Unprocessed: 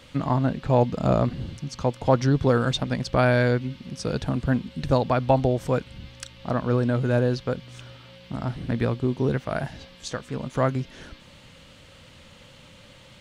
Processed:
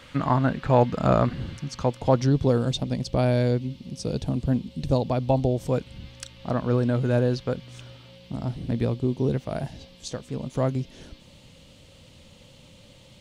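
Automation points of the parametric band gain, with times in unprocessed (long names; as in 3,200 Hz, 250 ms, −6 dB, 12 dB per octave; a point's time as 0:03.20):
parametric band 1,500 Hz 1.3 octaves
0:01.59 +6 dB
0:02.00 −2.5 dB
0:02.71 −14 dB
0:05.53 −14 dB
0:05.98 −3.5 dB
0:07.74 −3.5 dB
0:08.43 −11 dB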